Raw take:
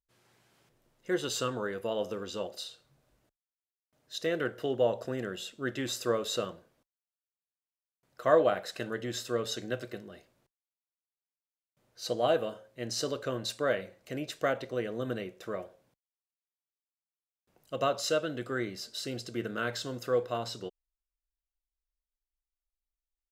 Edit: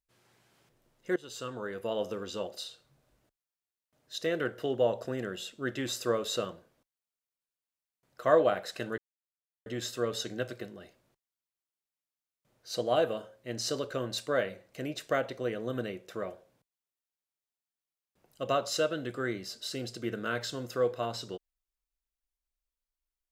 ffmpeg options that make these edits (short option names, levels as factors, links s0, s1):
-filter_complex "[0:a]asplit=3[s0][s1][s2];[s0]atrim=end=1.16,asetpts=PTS-STARTPTS,afade=t=out:st=1.156:d=0.004:c=hsin:silence=0.11885[s3];[s1]atrim=start=1.16:end=8.98,asetpts=PTS-STARTPTS,afade=t=in:d=0.77:silence=0.11885,afade=t=out:st=7.816:d=0.004:c=hsin,apad=pad_dur=0.68[s4];[s2]atrim=start=8.98,asetpts=PTS-STARTPTS,afade=t=in:d=0.004:c=hsin[s5];[s3][s4][s5]concat=n=3:v=0:a=1"